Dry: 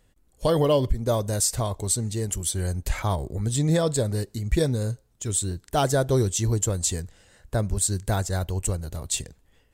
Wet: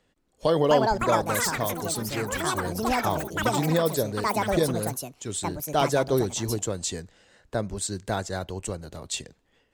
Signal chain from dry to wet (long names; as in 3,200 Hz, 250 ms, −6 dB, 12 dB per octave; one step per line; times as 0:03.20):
three-way crossover with the lows and the highs turned down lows −13 dB, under 160 Hz, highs −13 dB, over 6,500 Hz
delay with pitch and tempo change per echo 406 ms, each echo +7 semitones, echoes 3